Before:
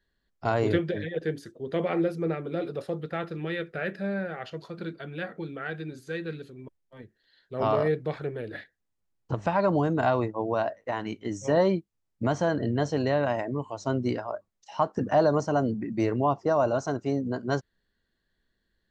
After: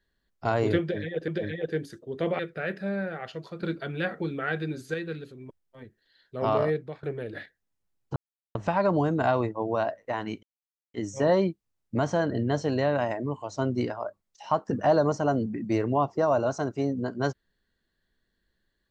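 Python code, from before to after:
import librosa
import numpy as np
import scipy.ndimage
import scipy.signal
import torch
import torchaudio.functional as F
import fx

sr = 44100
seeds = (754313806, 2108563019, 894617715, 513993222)

y = fx.edit(x, sr, fx.repeat(start_s=0.81, length_s=0.47, count=2),
    fx.cut(start_s=1.92, length_s=1.65),
    fx.clip_gain(start_s=4.81, length_s=1.31, db=5.0),
    fx.fade_out_to(start_s=7.83, length_s=0.38, floor_db=-18.5),
    fx.insert_silence(at_s=9.34, length_s=0.39),
    fx.insert_silence(at_s=11.22, length_s=0.51), tone=tone)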